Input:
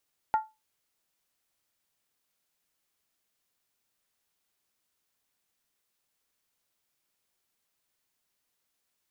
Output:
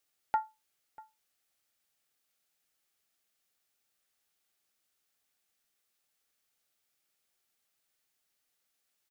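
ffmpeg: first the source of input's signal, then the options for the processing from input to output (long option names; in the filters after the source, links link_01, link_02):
-f lavfi -i "aevalsrc='0.126*pow(10,-3*t/0.23)*sin(2*PI*872*t)+0.0316*pow(10,-3*t/0.182)*sin(2*PI*1390*t)+0.00794*pow(10,-3*t/0.157)*sin(2*PI*1862.6*t)+0.002*pow(10,-3*t/0.152)*sin(2*PI*2002.1*t)+0.000501*pow(10,-3*t/0.141)*sin(2*PI*2313.4*t)':duration=0.63:sample_rate=44100"
-filter_complex "[0:a]asuperstop=centerf=1000:order=4:qfactor=7.3,lowshelf=frequency=440:gain=-5,asplit=2[link_01][link_02];[link_02]adelay=641.4,volume=-21dB,highshelf=frequency=4000:gain=-14.4[link_03];[link_01][link_03]amix=inputs=2:normalize=0"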